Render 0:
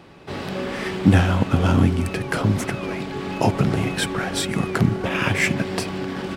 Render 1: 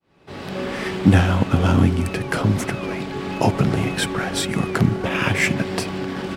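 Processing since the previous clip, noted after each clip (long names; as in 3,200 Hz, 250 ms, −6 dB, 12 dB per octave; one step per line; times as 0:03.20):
fade in at the beginning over 0.64 s
level +1 dB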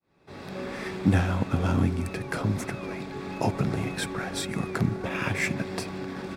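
notch filter 3,000 Hz, Q 7.7
level −8 dB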